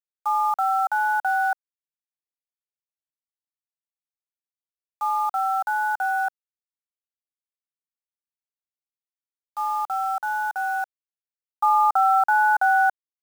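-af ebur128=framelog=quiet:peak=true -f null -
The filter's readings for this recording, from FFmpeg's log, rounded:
Integrated loudness:
  I:         -22.3 LUFS
  Threshold: -32.5 LUFS
Loudness range:
  LRA:        13.2 LU
  Threshold: -47.3 LUFS
  LRA low:   -35.1 LUFS
  LRA high:  -22.0 LUFS
True peak:
  Peak:      -11.3 dBFS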